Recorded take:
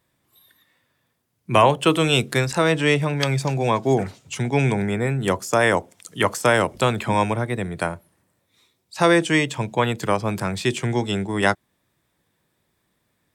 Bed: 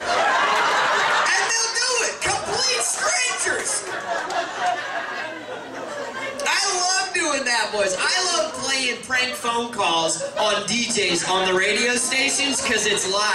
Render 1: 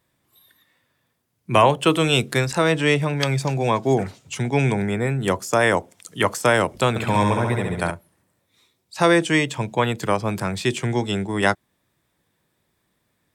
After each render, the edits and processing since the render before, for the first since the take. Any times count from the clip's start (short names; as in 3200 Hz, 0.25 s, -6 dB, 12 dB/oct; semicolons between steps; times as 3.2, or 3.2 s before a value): 6.89–7.91 flutter echo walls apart 11.7 m, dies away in 1 s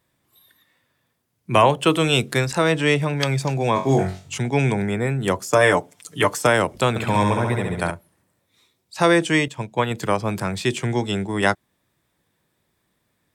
3.74–4.38 flutter echo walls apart 3.7 m, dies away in 0.33 s; 5.52–6.47 comb 6.8 ms; 9.48–9.91 upward expander, over -36 dBFS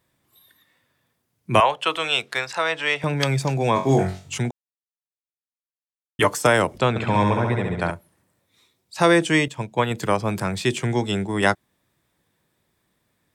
1.6–3.04 three-band isolator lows -21 dB, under 580 Hz, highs -12 dB, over 5500 Hz; 4.51–6.19 mute; 6.78–7.91 air absorption 98 m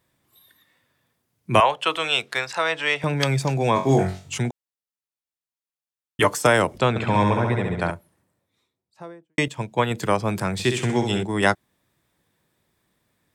7.73–9.38 studio fade out; 10.53–11.23 flutter echo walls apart 10.9 m, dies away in 0.56 s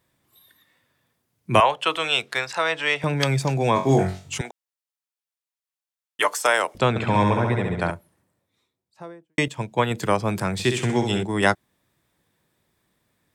4.41–6.75 HPF 630 Hz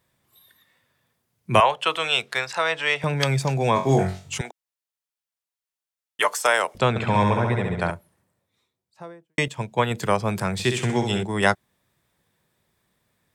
bell 300 Hz -6 dB 0.35 oct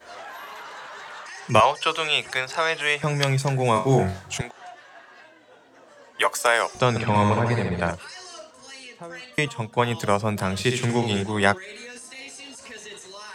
add bed -20 dB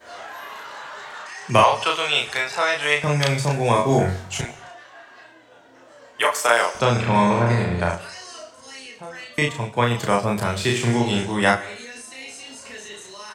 doubler 34 ms -2 dB; non-linear reverb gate 0.28 s falling, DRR 12 dB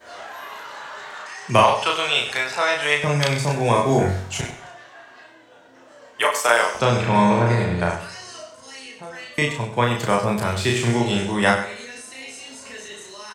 on a send: echo 96 ms -11.5 dB; on the sum: two-slope reverb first 0.55 s, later 2.1 s, DRR 15.5 dB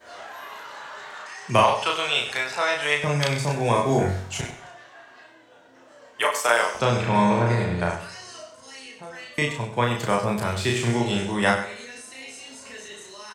gain -3 dB